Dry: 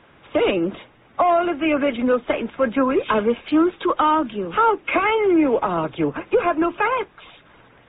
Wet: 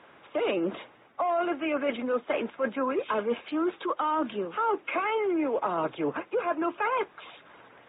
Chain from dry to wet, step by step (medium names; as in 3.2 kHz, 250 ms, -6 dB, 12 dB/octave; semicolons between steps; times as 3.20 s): high-pass 730 Hz 6 dB/octave; tilt shelf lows +4.5 dB, about 1.4 kHz; reverse; compression, threshold -25 dBFS, peak gain reduction 10.5 dB; reverse